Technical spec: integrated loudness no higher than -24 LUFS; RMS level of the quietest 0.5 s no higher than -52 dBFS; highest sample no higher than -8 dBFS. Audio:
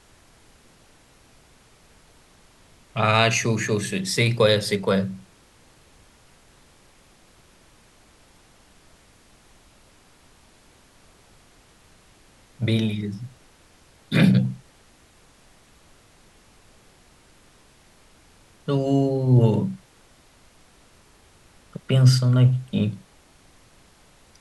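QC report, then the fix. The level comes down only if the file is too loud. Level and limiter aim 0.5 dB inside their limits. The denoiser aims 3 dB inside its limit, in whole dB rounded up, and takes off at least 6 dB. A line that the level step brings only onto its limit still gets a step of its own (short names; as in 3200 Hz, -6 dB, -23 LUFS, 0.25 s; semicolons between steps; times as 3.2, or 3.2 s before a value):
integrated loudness -21.5 LUFS: fail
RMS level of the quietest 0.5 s -55 dBFS: OK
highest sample -3.0 dBFS: fail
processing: gain -3 dB; limiter -8.5 dBFS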